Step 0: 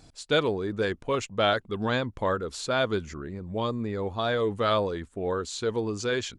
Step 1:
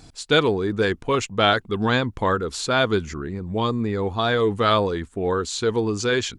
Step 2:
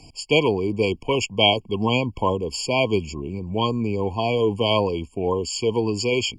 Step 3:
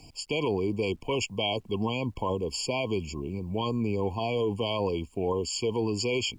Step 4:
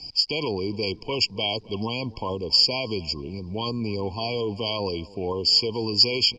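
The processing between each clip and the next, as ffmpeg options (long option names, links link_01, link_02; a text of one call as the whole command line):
ffmpeg -i in.wav -af "equalizer=frequency=580:width=5.5:gain=-7.5,volume=7dB" out.wav
ffmpeg -i in.wav -filter_complex "[0:a]acrossover=split=160|630|4600[link_01][link_02][link_03][link_04];[link_03]crystalizer=i=5:c=0[link_05];[link_01][link_02][link_05][link_04]amix=inputs=4:normalize=0,afftfilt=real='re*eq(mod(floor(b*sr/1024/1100),2),0)':imag='im*eq(mod(floor(b*sr/1024/1100),2),0)':win_size=1024:overlap=0.75" out.wav
ffmpeg -i in.wav -af "alimiter=limit=-15dB:level=0:latency=1:release=40,acrusher=bits=10:mix=0:aa=0.000001,volume=-4dB" out.wav
ffmpeg -i in.wav -filter_complex "[0:a]lowpass=frequency=4900:width_type=q:width=12,asplit=2[link_01][link_02];[link_02]adelay=275,lowpass=frequency=1900:poles=1,volume=-20.5dB,asplit=2[link_03][link_04];[link_04]adelay=275,lowpass=frequency=1900:poles=1,volume=0.48,asplit=2[link_05][link_06];[link_06]adelay=275,lowpass=frequency=1900:poles=1,volume=0.48,asplit=2[link_07][link_08];[link_08]adelay=275,lowpass=frequency=1900:poles=1,volume=0.48[link_09];[link_01][link_03][link_05][link_07][link_09]amix=inputs=5:normalize=0" out.wav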